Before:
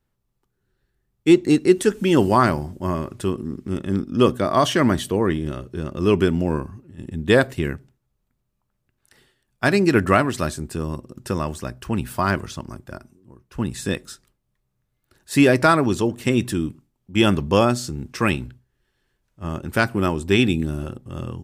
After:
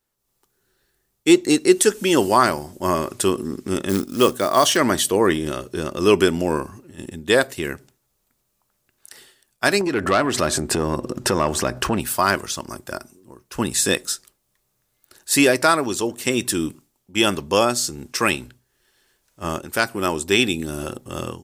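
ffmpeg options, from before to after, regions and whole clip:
-filter_complex "[0:a]asettb=1/sr,asplit=3[s0][s1][s2];[s0]atrim=end=3.894[s3];[s1]atrim=start=3.89:end=4.77,asetpts=PTS-STARTPTS,afade=t=in:d=0.004:c=qsin,afade=t=out:st=0.876:d=0.004:c=qsin,acrusher=bits=7:mode=log:mix=0:aa=0.000001,asoftclip=type=hard:threshold=0.501[s4];[s2]atrim=start=4.766[s5];[s3][s4]acrossfade=d=0.004:c1=hsin:c2=qsin[s6];[s6][s5]acrossfade=d=0.004:c1=qsin:c2=hsin,asettb=1/sr,asplit=3[s7][s8][s9];[s7]atrim=end=9.814[s10];[s8]atrim=start=9.81:end=12,asetpts=PTS-STARTPTS,afade=t=in:d=0.004:c=qsin,afade=t=out:st=2.186:d=0.004:c=qsin,lowpass=f=1900:p=1,acompressor=threshold=0.0158:ratio=2.5:attack=3.2:release=140:knee=1:detection=peak,aeval=exprs='0.188*sin(PI/2*2.82*val(0)/0.188)':c=same[s11];[s9]atrim=start=11.996[s12];[s10][s11]acrossfade=d=0.004:c1=hsin:c2=qsin[s13];[s13][s12]acrossfade=d=0.004:c1=qsin:c2=hsin,bass=f=250:g=-12,treble=f=4000:g=9,dynaudnorm=f=160:g=3:m=2.82,volume=0.891"

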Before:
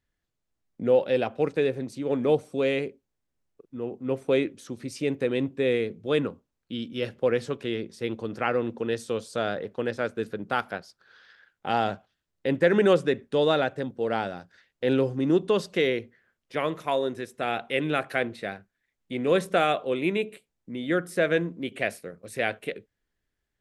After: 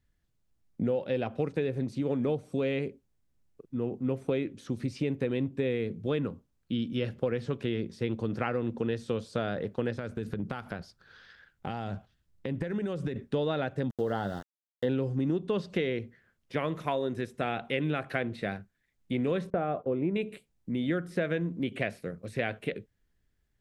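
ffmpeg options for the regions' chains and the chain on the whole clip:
-filter_complex "[0:a]asettb=1/sr,asplit=3[s0][s1][s2];[s0]atrim=end=9.984[s3];[s1]atrim=start=9.98:end=13.16,asetpts=PTS-STARTPTS,afade=t=in:d=0.004:c=qsin,afade=t=out:st=3.176:d=0.004:c=qsin,lowshelf=f=120:g=8.5,acompressor=threshold=0.0251:ratio=10:attack=3.2:release=140:knee=1:detection=peak[s4];[s2]atrim=start=13.156[s5];[s3][s4]acrossfade=d=0.004:c1=hsin:c2=qsin[s6];[s6][s5]acrossfade=d=0.004:c1=qsin:c2=hsin,asettb=1/sr,asplit=3[s7][s8][s9];[s7]atrim=end=13.904[s10];[s8]atrim=start=13.9:end=14.89,asetpts=PTS-STARTPTS,afade=t=in:d=0.004:c=qsin,afade=t=out:st=0.986:d=0.004:c=qsin,asplit=2[s11][s12];[s12]adelay=20,volume=0.266[s13];[s11][s13]amix=inputs=2:normalize=0,atrim=end_sample=43659,aeval=exprs='val(0)*gte(abs(val(0)),0.0075)':c=same,asuperstop=centerf=2400:order=4:qfactor=2.7[s14];[s9]atrim=start=14.886[s15];[s10][s14]acrossfade=d=0.004:c1=hsin:c2=qsin[s16];[s16][s15]acrossfade=d=0.004:c1=qsin:c2=hsin,asettb=1/sr,asplit=3[s17][s18][s19];[s17]atrim=end=19.504[s20];[s18]atrim=start=19.5:end=20.16,asetpts=PTS-STARTPTS,afade=t=in:d=0.004:c=qsin,afade=t=out:st=0.656:d=0.004:c=qsin,lowpass=1000,agate=range=0.141:threshold=0.0112:ratio=16:release=100:detection=peak[s21];[s19]atrim=start=20.156[s22];[s20][s21]acrossfade=d=0.004:c1=hsin:c2=qsin[s23];[s23][s22]acrossfade=d=0.004:c1=qsin:c2=hsin,acrossover=split=4500[s24][s25];[s25]acompressor=threshold=0.00112:ratio=4:attack=1:release=60[s26];[s24][s26]amix=inputs=2:normalize=0,bass=f=250:g=9,treble=f=4000:g=1,acompressor=threshold=0.0501:ratio=6"

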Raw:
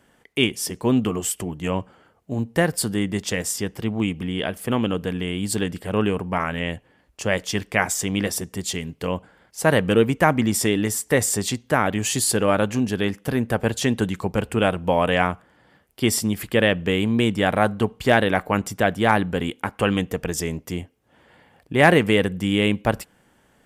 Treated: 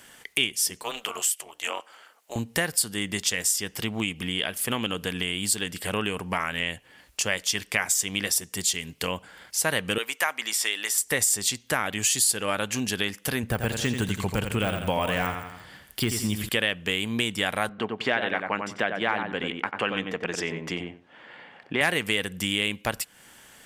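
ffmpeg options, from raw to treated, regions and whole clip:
-filter_complex "[0:a]asettb=1/sr,asplit=3[s0][s1][s2];[s0]atrim=end=0.834[s3];[s1]atrim=start=0.83:end=2.36,asetpts=PTS-STARTPTS,afade=t=in:d=0.004:c=qsin,afade=t=out:st=1.526:d=0.004:c=qsin,highpass=f=490:w=0.5412,highpass=f=490:w=1.3066,tremolo=f=230:d=0.75[s4];[s2]atrim=start=2.356[s5];[s3][s4]acrossfade=d=0.004:c1=hsin:c2=qsin[s6];[s6][s5]acrossfade=d=0.004:c1=qsin:c2=hsin,asettb=1/sr,asplit=3[s7][s8][s9];[s7]atrim=end=9.984[s10];[s8]atrim=start=9.98:end=10.98,asetpts=PTS-STARTPTS,afade=t=in:d=0.004:c=qsin,afade=t=out:st=0.996:d=0.004:c=qsin,acrossover=split=4100[s11][s12];[s12]acompressor=threshold=0.0282:ratio=4:attack=1:release=60[s13];[s11][s13]amix=inputs=2:normalize=0,highpass=710[s14];[s9]atrim=start=10.976[s15];[s10][s14]acrossfade=d=0.004:c1=hsin:c2=qsin[s16];[s16][s15]acrossfade=d=0.004:c1=qsin:c2=hsin,asettb=1/sr,asplit=3[s17][s18][s19];[s17]atrim=end=13.434[s20];[s18]atrim=start=13.43:end=16.49,asetpts=PTS-STARTPTS,afade=t=in:d=0.004:c=qsin,afade=t=out:st=3.056:d=0.004:c=qsin,deesser=0.8,lowshelf=f=160:g=10.5,aecho=1:1:85|170|255|340:0.398|0.151|0.0575|0.0218,atrim=end_sample=134946[s21];[s19]atrim=start=16.486[s22];[s20][s21]acrossfade=d=0.004:c1=hsin:c2=qsin[s23];[s23][s22]acrossfade=d=0.004:c1=qsin:c2=hsin,asettb=1/sr,asplit=3[s24][s25][s26];[s24]atrim=end=17.694[s27];[s25]atrim=start=17.69:end=21.81,asetpts=PTS-STARTPTS,afade=t=in:d=0.004:c=qsin,afade=t=out:st=4.116:d=0.004:c=qsin,highpass=180,lowpass=2600,asplit=2[s28][s29];[s29]adelay=92,lowpass=f=1400:p=1,volume=0.596,asplit=2[s30][s31];[s31]adelay=92,lowpass=f=1400:p=1,volume=0.17,asplit=2[s32][s33];[s33]adelay=92,lowpass=f=1400:p=1,volume=0.17[s34];[s28][s30][s32][s34]amix=inputs=4:normalize=0,atrim=end_sample=181692[s35];[s26]atrim=start=21.806[s36];[s27][s35]acrossfade=d=0.004:c1=hsin:c2=qsin[s37];[s37][s36]acrossfade=d=0.004:c1=qsin:c2=hsin,tiltshelf=f=1400:g=-8.5,acompressor=threshold=0.0141:ratio=2.5,volume=2.66"

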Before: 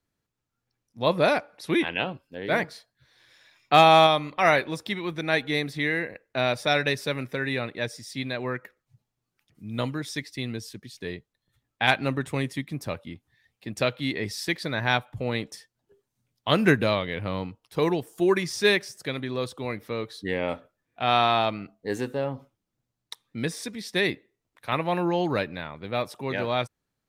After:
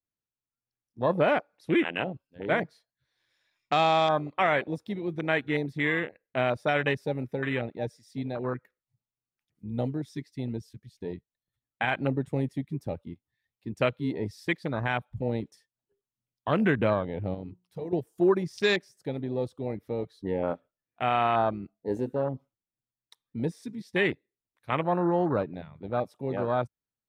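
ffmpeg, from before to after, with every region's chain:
-filter_complex "[0:a]asettb=1/sr,asplit=3[s0][s1][s2];[s0]atrim=end=17.344[s3];[s1]atrim=start=17.34:end=17.93,asetpts=PTS-STARTPTS,afade=t=in:d=0.004:c=qsin,afade=t=out:st=0.586:d=0.004:c=qsin,acompressor=threshold=0.0316:ratio=10:attack=3.2:release=140:knee=1:detection=peak,bandreject=f=60:t=h:w=6,bandreject=f=120:t=h:w=6,bandreject=f=180:t=h:w=6,bandreject=f=240:t=h:w=6,bandreject=f=300:t=h:w=6,bandreject=f=360:t=h:w=6,bandreject=f=420:t=h:w=6[s4];[s2]atrim=start=17.926[s5];[s3][s4]acrossfade=d=0.004:c1=hsin:c2=qsin[s6];[s6][s5]acrossfade=d=0.004:c1=qsin:c2=hsin,afwtdn=0.0398,alimiter=limit=0.211:level=0:latency=1:release=68,adynamicequalizer=threshold=0.0178:dfrequency=1800:dqfactor=0.7:tfrequency=1800:tqfactor=0.7:attack=5:release=100:ratio=0.375:range=2:mode=cutabove:tftype=highshelf"

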